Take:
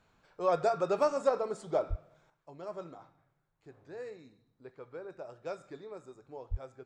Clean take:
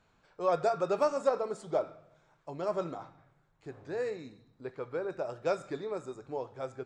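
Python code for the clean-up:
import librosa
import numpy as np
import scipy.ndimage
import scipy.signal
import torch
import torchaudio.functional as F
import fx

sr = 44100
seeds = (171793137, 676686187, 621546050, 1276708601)

y = fx.highpass(x, sr, hz=140.0, slope=24, at=(1.89, 2.01), fade=0.02)
y = fx.highpass(y, sr, hz=140.0, slope=24, at=(6.5, 6.62), fade=0.02)
y = fx.fix_level(y, sr, at_s=2.3, step_db=9.0)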